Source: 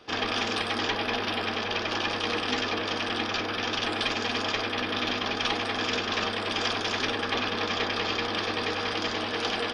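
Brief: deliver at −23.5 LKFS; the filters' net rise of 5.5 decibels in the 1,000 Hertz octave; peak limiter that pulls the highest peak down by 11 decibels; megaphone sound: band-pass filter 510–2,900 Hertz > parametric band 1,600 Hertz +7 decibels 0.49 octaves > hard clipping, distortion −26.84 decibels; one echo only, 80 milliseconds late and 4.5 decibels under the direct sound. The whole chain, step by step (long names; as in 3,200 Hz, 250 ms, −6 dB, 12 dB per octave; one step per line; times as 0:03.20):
parametric band 1,000 Hz +6 dB
brickwall limiter −23 dBFS
band-pass filter 510–2,900 Hz
parametric band 1,600 Hz +7 dB 0.49 octaves
single-tap delay 80 ms −4.5 dB
hard clipping −22.5 dBFS
level +6 dB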